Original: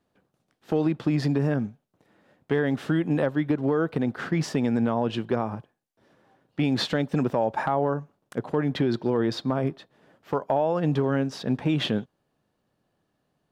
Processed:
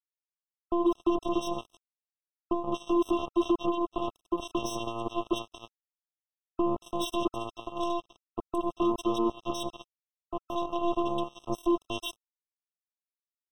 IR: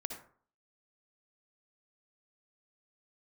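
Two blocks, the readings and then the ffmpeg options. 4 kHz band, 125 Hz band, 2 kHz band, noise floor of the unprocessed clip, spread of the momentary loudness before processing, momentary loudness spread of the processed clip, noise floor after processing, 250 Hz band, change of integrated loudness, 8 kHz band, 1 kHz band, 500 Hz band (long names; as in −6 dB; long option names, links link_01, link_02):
−4.5 dB, −19.5 dB, −12.5 dB, −76 dBFS, 6 LU, 11 LU, below −85 dBFS, −5.0 dB, −5.0 dB, +0.5 dB, −1.0 dB, −5.0 dB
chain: -filter_complex "[0:a]acrossover=split=670[link_01][link_02];[link_02]adelay=230[link_03];[link_01][link_03]amix=inputs=2:normalize=0,asplit=2[link_04][link_05];[1:a]atrim=start_sample=2205,asetrate=32634,aresample=44100[link_06];[link_05][link_06]afir=irnorm=-1:irlink=0,volume=-13.5dB[link_07];[link_04][link_07]amix=inputs=2:normalize=0,afftfilt=real='hypot(re,im)*cos(PI*b)':imag='0':win_size=512:overlap=0.75,acrusher=bits=3:mix=0:aa=0.5,afftfilt=real='re*eq(mod(floor(b*sr/1024/1300),2),0)':imag='im*eq(mod(floor(b*sr/1024/1300),2),0)':win_size=1024:overlap=0.75,volume=-1dB"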